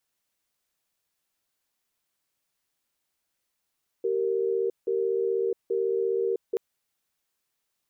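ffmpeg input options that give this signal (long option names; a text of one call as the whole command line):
ffmpeg -f lavfi -i "aevalsrc='0.0501*(sin(2*PI*387*t)+sin(2*PI*463*t))*clip(min(mod(t,0.83),0.66-mod(t,0.83))/0.005,0,1)':duration=2.53:sample_rate=44100" out.wav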